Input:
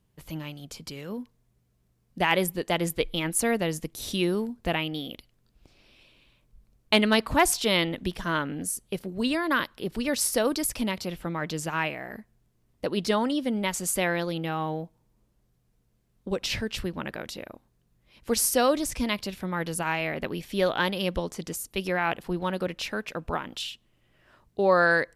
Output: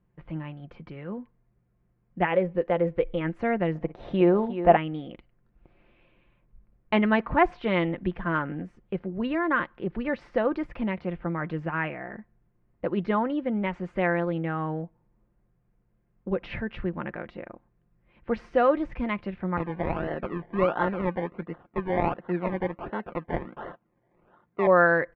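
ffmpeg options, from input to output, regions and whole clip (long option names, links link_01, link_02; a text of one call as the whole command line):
ffmpeg -i in.wav -filter_complex "[0:a]asettb=1/sr,asplit=3[link_01][link_02][link_03];[link_01]atrim=end=2.254[link_04];[link_02]atrim=start=2.25:end=3.21,asetpts=PTS-STARTPTS,afade=type=in:duration=0.004:curve=qsin,afade=type=out:start_time=0.956:duration=0.004:curve=qsin,equalizer=frequency=520:width=4.2:gain=11.5,acompressor=threshold=-27dB:ratio=1.5:attack=3.2:release=140:knee=1:detection=peak[link_05];[link_03]atrim=start=3.206[link_06];[link_04][link_05]acrossfade=duration=0.004:curve1=hsin:curve2=qsin[link_07];[link_07][link_06]acrossfade=duration=0.004:curve1=qsin:curve2=hsin,asettb=1/sr,asplit=3[link_08][link_09][link_10];[link_08]atrim=end=3.754[link_11];[link_09]atrim=start=3.75:end=4.77,asetpts=PTS-STARTPTS,afade=type=in:duration=0.004:curve=qsin,afade=type=out:start_time=1.016:duration=0.004:curve=qsin,equalizer=frequency=700:width_type=o:width=1.3:gain=12.5,aecho=1:1:52|59|358:0.112|0.119|0.282,atrim=end_sample=44982[link_12];[link_10]atrim=start=4.766[link_13];[link_11][link_12]acrossfade=duration=0.004:curve1=hsin:curve2=qsin[link_14];[link_14][link_13]acrossfade=duration=0.004:curve1=qsin:curve2=hsin,asettb=1/sr,asplit=3[link_15][link_16][link_17];[link_15]atrim=end=19.574[link_18];[link_16]atrim=start=19.57:end=24.67,asetpts=PTS-STARTPTS,afade=type=in:duration=0.004:curve=qsin,afade=type=out:start_time=5.096:duration=0.004:curve=qsin,highpass=160,lowpass=3200,acrusher=samples=26:mix=1:aa=0.000001:lfo=1:lforange=15.6:lforate=1.4[link_19];[link_17]atrim=start=24.666[link_20];[link_18][link_19]acrossfade=duration=0.004:curve1=hsin:curve2=qsin[link_21];[link_21][link_20]acrossfade=duration=0.004:curve1=qsin:curve2=hsin,lowpass=frequency=2100:width=0.5412,lowpass=frequency=2100:width=1.3066,aecho=1:1:5.7:0.37" out.wav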